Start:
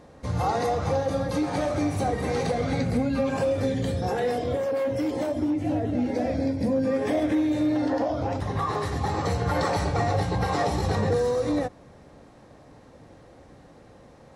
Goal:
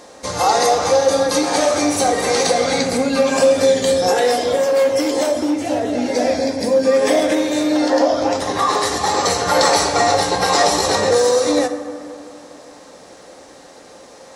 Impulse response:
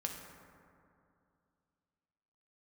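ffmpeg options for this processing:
-filter_complex "[0:a]bass=f=250:g=-12,treble=f=4000:g=12,asplit=2[s0][s1];[s1]highpass=190,lowpass=7600[s2];[1:a]atrim=start_sample=2205,highshelf=f=6000:g=8[s3];[s2][s3]afir=irnorm=-1:irlink=0,volume=1[s4];[s0][s4]amix=inputs=2:normalize=0,volume=1.88"

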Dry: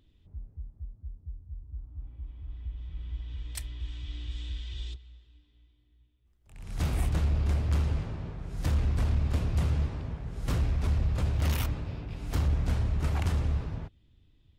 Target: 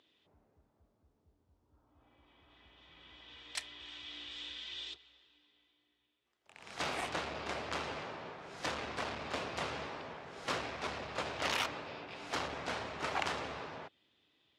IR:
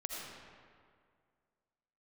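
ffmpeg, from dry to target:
-af "highpass=560,lowpass=5400,volume=1.88"

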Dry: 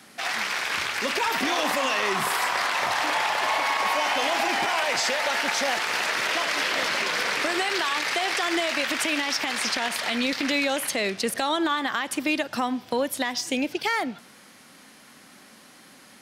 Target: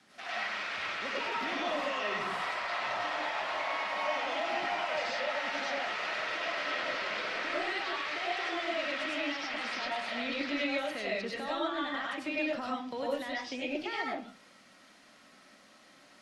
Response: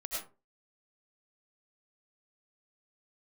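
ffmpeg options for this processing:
-filter_complex "[0:a]lowpass=6700,acrossover=split=360|4400[s0][s1][s2];[s1]alimiter=limit=0.119:level=0:latency=1[s3];[s2]acompressor=threshold=0.00316:ratio=12[s4];[s0][s3][s4]amix=inputs=3:normalize=0[s5];[1:a]atrim=start_sample=2205[s6];[s5][s6]afir=irnorm=-1:irlink=0,volume=0.376"

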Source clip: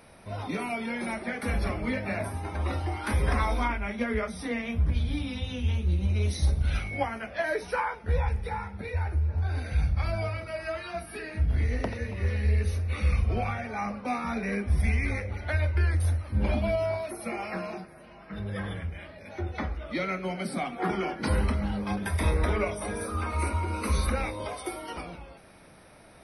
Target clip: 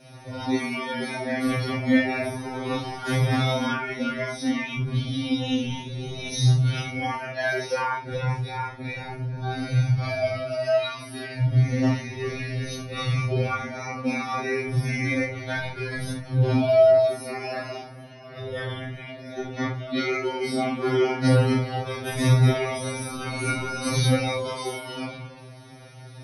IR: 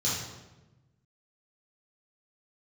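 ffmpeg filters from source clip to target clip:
-filter_complex "[0:a]asettb=1/sr,asplit=3[s0][s1][s2];[s0]atrim=end=22.094[s3];[s1]atrim=start=22.09:end=24.4,asetpts=PTS-STARTPTS,afade=t=in:d=0.004:c=qsin,afade=t=out:st=2.306:d=0.004:c=qsin,bass=f=250:g=4,treble=f=4000:g=3[s4];[s2]atrim=start=24.396[s5];[s3][s4]acrossfade=d=0.004:c1=hsin:c2=qsin[s6];[s6][s5]acrossfade=d=0.004:c1=qsin:c2=hsin[s7];[1:a]atrim=start_sample=2205,atrim=end_sample=3528,asetrate=41013,aresample=44100[s8];[s7][s8]afir=irnorm=-1:irlink=0,afftfilt=real='re*2.45*eq(mod(b,6),0)':imag='im*2.45*eq(mod(b,6),0)':win_size=2048:overlap=0.75"

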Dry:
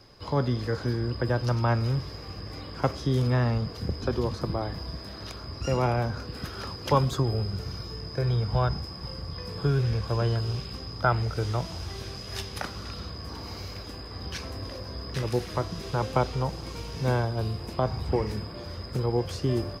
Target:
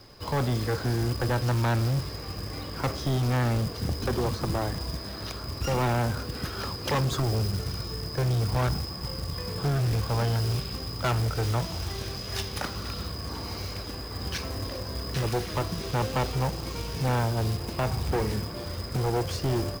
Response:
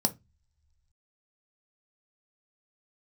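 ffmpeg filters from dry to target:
-af "volume=22.4,asoftclip=hard,volume=0.0447,acrusher=bits=3:mode=log:mix=0:aa=0.000001,volume=1.41"

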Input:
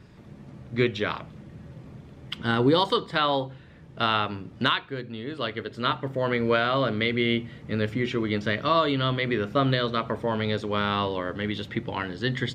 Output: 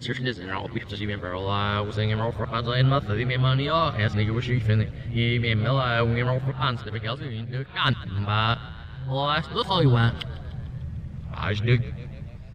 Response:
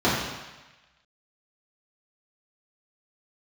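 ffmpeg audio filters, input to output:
-filter_complex "[0:a]areverse,asplit=6[s0][s1][s2][s3][s4][s5];[s1]adelay=149,afreqshift=56,volume=0.1[s6];[s2]adelay=298,afreqshift=112,volume=0.0631[s7];[s3]adelay=447,afreqshift=168,volume=0.0398[s8];[s4]adelay=596,afreqshift=224,volume=0.0251[s9];[s5]adelay=745,afreqshift=280,volume=0.0157[s10];[s0][s6][s7][s8][s9][s10]amix=inputs=6:normalize=0,asubboost=boost=11:cutoff=90"

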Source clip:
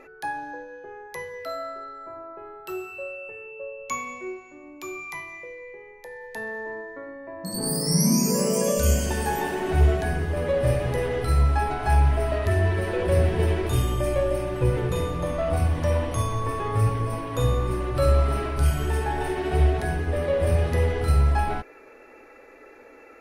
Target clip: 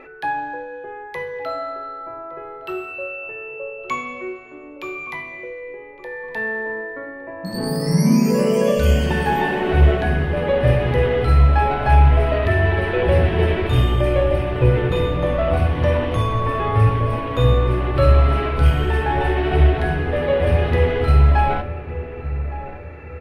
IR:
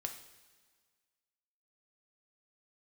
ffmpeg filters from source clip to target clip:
-filter_complex "[0:a]highshelf=f=4600:t=q:w=1.5:g=-13,asplit=2[s0][s1];[s1]adelay=1163,lowpass=f=840:p=1,volume=0.251,asplit=2[s2][s3];[s3]adelay=1163,lowpass=f=840:p=1,volume=0.42,asplit=2[s4][s5];[s5]adelay=1163,lowpass=f=840:p=1,volume=0.42,asplit=2[s6][s7];[s7]adelay=1163,lowpass=f=840:p=1,volume=0.42[s8];[s0][s2][s4][s6][s8]amix=inputs=5:normalize=0,asplit=2[s9][s10];[1:a]atrim=start_sample=2205[s11];[s10][s11]afir=irnorm=-1:irlink=0,volume=1.19[s12];[s9][s12]amix=inputs=2:normalize=0"

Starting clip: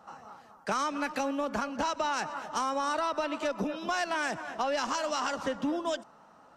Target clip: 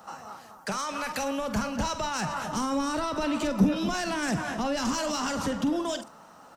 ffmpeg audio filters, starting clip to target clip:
-filter_complex "[0:a]asettb=1/sr,asplit=3[s0][s1][s2];[s0]atrim=end=0.724[s3];[s1]atrim=start=0.72:end=2.46,asetpts=PTS-STARTPTS,afade=t=in:d=0.004:c=qsin,afade=t=out:st=1.736:d=0.004:c=qsin,equalizer=f=290:t=o:w=0.56:g=-9.5[s4];[s2]atrim=start=2.456[s5];[s3][s4]acrossfade=d=0.004:c1=hsin:c2=qsin[s6];[s6][s5]acrossfade=d=0.004:c1=qsin:c2=hsin,acrossover=split=220[s7][s8];[s7]dynaudnorm=f=230:g=13:m=5.62[s9];[s8]alimiter=level_in=1.88:limit=0.0631:level=0:latency=1:release=11,volume=0.531[s10];[s9][s10]amix=inputs=2:normalize=0,crystalizer=i=2:c=0,asplit=2[s11][s12];[s12]volume=44.7,asoftclip=hard,volume=0.0224,volume=0.501[s13];[s11][s13]amix=inputs=2:normalize=0,asplit=2[s14][s15];[s15]adelay=47,volume=0.282[s16];[s14][s16]amix=inputs=2:normalize=0,volume=1.19"

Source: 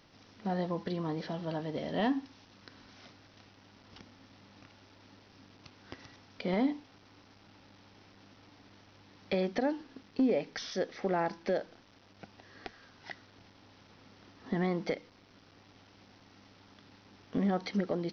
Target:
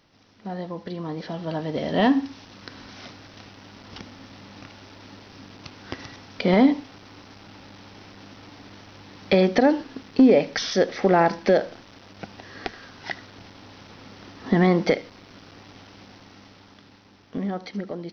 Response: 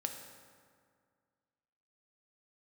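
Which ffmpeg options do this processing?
-filter_complex "[0:a]dynaudnorm=f=110:g=31:m=4.47,asplit=2[s0][s1];[1:a]atrim=start_sample=2205,atrim=end_sample=3528,adelay=76[s2];[s1][s2]afir=irnorm=-1:irlink=0,volume=0.106[s3];[s0][s3]amix=inputs=2:normalize=0"

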